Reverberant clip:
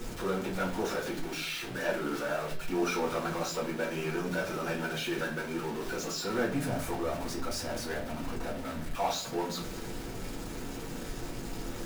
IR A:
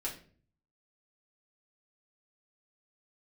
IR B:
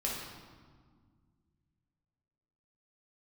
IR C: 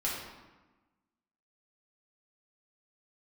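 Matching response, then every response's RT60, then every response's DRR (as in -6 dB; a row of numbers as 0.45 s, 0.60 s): A; 0.45 s, 1.7 s, 1.2 s; -4.5 dB, -4.5 dB, -7.0 dB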